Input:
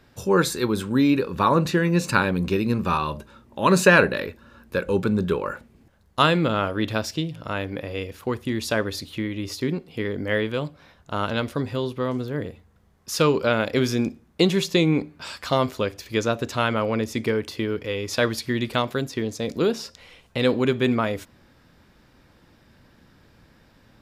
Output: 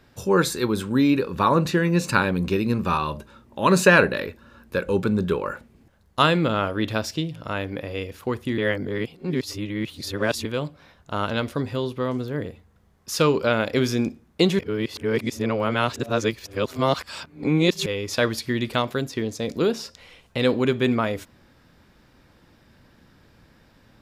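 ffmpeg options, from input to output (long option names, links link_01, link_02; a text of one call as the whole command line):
ffmpeg -i in.wav -filter_complex "[0:a]asplit=5[link_01][link_02][link_03][link_04][link_05];[link_01]atrim=end=8.582[link_06];[link_02]atrim=start=8.578:end=10.452,asetpts=PTS-STARTPTS,areverse[link_07];[link_03]atrim=start=10.448:end=14.592[link_08];[link_04]atrim=start=14.588:end=17.862,asetpts=PTS-STARTPTS,areverse[link_09];[link_05]atrim=start=17.858[link_10];[link_06][link_07]acrossfade=duration=0.004:curve1=hsin:curve2=hsin[link_11];[link_11][link_08]acrossfade=duration=0.004:curve1=hsin:curve2=hsin[link_12];[link_12][link_09]acrossfade=duration=0.004:curve1=hsin:curve2=hsin[link_13];[link_13][link_10]acrossfade=duration=0.004:curve1=hsin:curve2=hsin" out.wav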